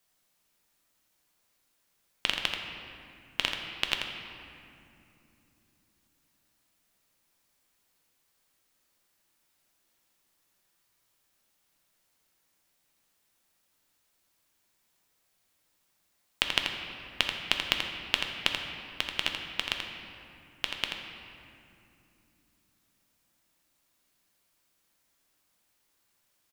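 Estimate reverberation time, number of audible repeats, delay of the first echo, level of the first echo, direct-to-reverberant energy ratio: 2.7 s, 1, 84 ms, -6.5 dB, 1.0 dB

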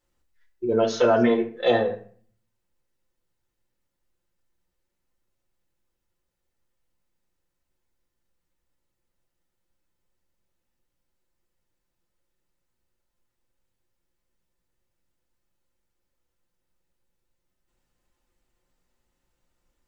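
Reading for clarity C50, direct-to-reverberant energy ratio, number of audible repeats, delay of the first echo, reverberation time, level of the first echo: 12.0 dB, -0.5 dB, no echo, no echo, 0.50 s, no echo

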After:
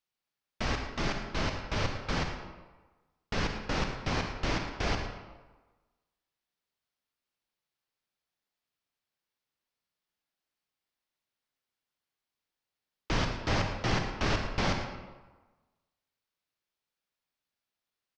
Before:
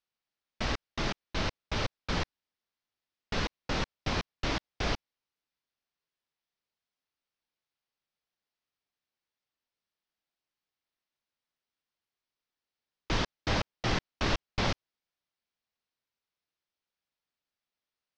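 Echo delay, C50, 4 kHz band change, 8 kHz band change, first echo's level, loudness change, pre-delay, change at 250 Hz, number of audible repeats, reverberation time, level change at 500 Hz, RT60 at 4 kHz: 112 ms, 4.5 dB, -1.0 dB, +0.5 dB, -14.0 dB, +1.0 dB, 40 ms, +1.5 dB, 1, 1.3 s, +1.5 dB, 0.80 s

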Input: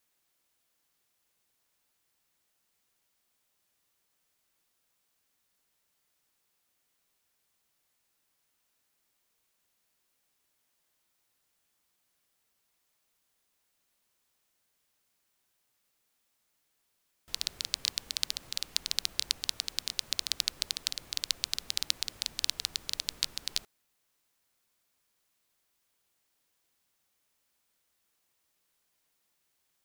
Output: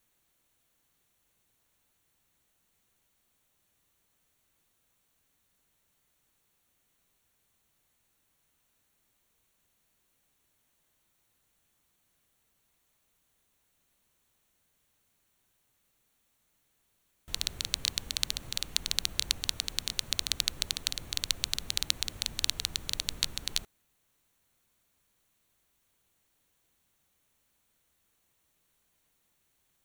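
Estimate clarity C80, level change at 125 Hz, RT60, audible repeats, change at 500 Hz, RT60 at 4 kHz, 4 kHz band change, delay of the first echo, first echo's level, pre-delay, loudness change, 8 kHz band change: no reverb, +11.0 dB, no reverb, no echo, +4.5 dB, no reverb, +1.0 dB, no echo, no echo, no reverb, +1.0 dB, +2.0 dB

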